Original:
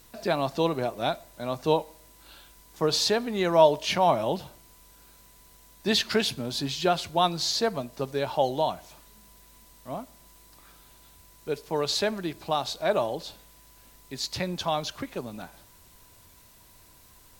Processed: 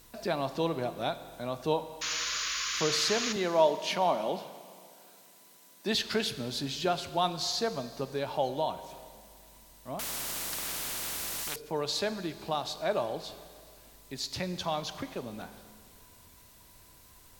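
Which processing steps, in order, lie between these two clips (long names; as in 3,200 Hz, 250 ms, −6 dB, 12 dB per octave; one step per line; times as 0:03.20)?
0:03.36–0:05.95: high-pass filter 180 Hz 24 dB per octave
in parallel at −2.5 dB: downward compressor, threshold −36 dBFS, peak gain reduction 21.5 dB
0:02.01–0:03.33: on the sum: sound drawn into the spectrogram noise 1,000–7,100 Hz −27 dBFS
four-comb reverb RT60 2.2 s, combs from 33 ms, DRR 12 dB
0:09.99–0:11.56: every bin compressed towards the loudest bin 10 to 1
level −6.5 dB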